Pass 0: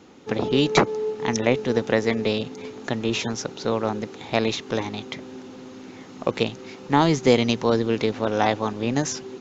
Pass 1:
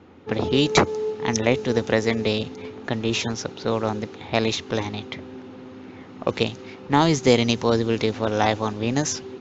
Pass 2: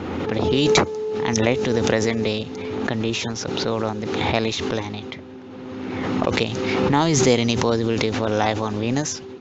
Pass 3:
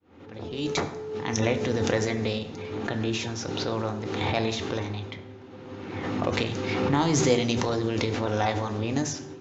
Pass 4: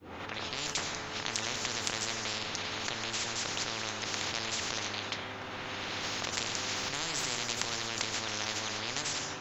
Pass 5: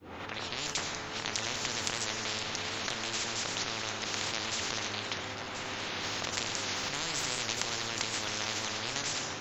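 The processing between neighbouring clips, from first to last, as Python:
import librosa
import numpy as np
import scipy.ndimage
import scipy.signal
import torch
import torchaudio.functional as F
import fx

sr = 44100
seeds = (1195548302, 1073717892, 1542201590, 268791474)

y1 = fx.high_shelf(x, sr, hz=5100.0, db=7.0)
y1 = fx.env_lowpass(y1, sr, base_hz=2200.0, full_db=-15.5)
y1 = fx.peak_eq(y1, sr, hz=86.0, db=14.0, octaves=0.35)
y2 = fx.pre_swell(y1, sr, db_per_s=24.0)
y2 = y2 * 10.0 ** (-1.0 / 20.0)
y3 = fx.fade_in_head(y2, sr, length_s=1.36)
y3 = fx.rev_fdn(y3, sr, rt60_s=1.0, lf_ratio=1.2, hf_ratio=0.55, size_ms=59.0, drr_db=5.5)
y3 = y3 * 10.0 ** (-6.5 / 20.0)
y4 = fx.spectral_comp(y3, sr, ratio=10.0)
y5 = y4 + 10.0 ** (-9.5 / 20.0) * np.pad(y4, (int(1031 * sr / 1000.0), 0))[:len(y4)]
y5 = fx.record_warp(y5, sr, rpm=78.0, depth_cents=100.0)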